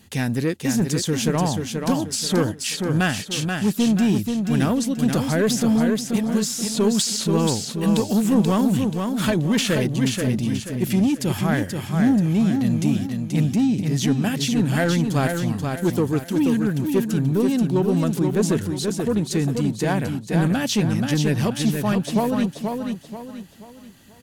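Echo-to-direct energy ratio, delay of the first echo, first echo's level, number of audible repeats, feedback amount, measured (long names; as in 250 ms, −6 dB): −4.5 dB, 482 ms, −5.0 dB, 4, 37%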